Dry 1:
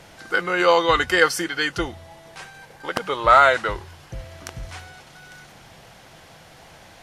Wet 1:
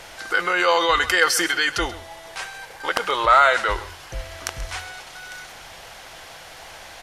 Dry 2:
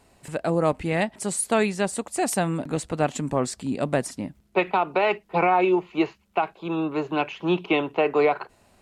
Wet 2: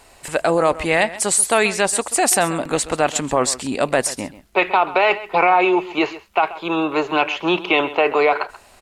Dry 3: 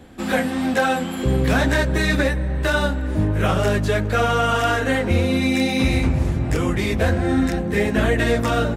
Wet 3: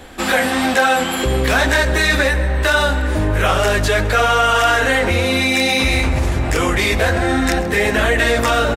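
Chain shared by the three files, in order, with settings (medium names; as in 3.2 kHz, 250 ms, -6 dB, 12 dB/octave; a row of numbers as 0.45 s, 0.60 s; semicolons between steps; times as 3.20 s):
peaking EQ 160 Hz -14.5 dB 2.4 oct; in parallel at -2 dB: compressor with a negative ratio -29 dBFS, ratio -1; on the sum: delay 133 ms -16.5 dB; peak normalisation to -2 dBFS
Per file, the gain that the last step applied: 0.0 dB, +6.5 dB, +5.5 dB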